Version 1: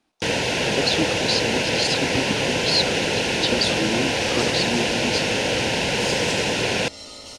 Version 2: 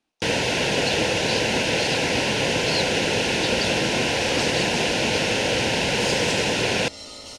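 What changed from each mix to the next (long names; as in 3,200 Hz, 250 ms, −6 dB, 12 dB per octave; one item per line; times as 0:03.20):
speech −8.0 dB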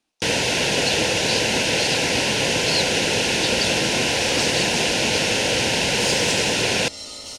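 master: add high-shelf EQ 4,300 Hz +8 dB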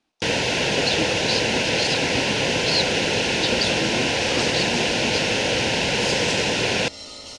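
speech +4.0 dB
master: add high-frequency loss of the air 68 metres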